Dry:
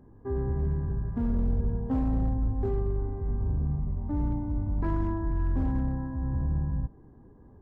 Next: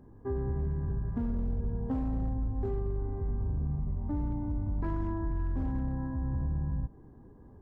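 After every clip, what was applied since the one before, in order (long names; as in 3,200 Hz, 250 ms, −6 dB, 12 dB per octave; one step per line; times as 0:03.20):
downward compressor, threshold −28 dBFS, peak gain reduction 5.5 dB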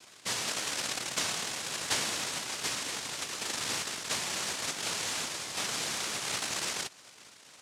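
cochlear-implant simulation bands 1
level +1 dB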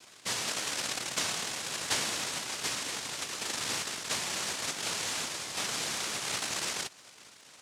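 surface crackle 34 per second −52 dBFS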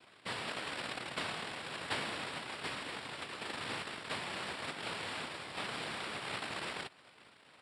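moving average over 7 samples
level −2 dB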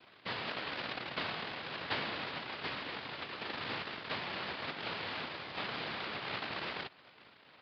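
downsampling to 11,025 Hz
level +1 dB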